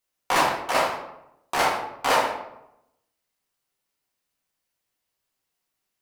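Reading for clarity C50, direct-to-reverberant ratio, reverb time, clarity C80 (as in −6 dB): 4.5 dB, −4.5 dB, 0.85 s, 7.5 dB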